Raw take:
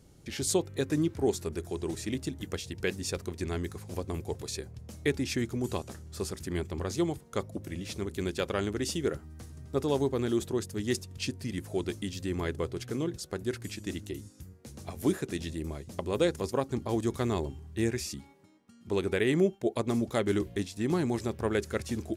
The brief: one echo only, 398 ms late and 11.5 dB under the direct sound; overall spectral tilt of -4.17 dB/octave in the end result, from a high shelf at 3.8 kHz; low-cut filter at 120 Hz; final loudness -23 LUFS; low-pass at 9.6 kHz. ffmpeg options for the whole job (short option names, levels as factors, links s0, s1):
-af "highpass=120,lowpass=9600,highshelf=f=3800:g=7,aecho=1:1:398:0.266,volume=2.82"